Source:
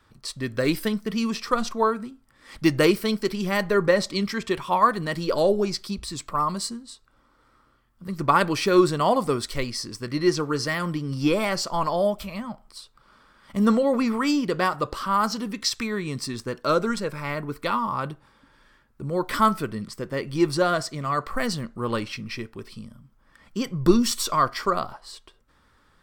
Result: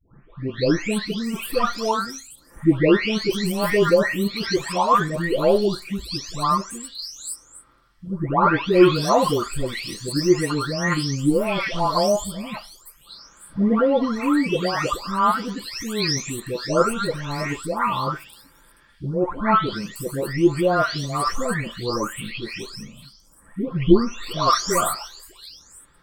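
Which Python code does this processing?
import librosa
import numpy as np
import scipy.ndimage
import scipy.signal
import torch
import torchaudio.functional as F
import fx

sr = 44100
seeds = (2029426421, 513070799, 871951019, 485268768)

y = fx.spec_delay(x, sr, highs='late', ms=666)
y = F.gain(torch.from_numpy(y), 4.5).numpy()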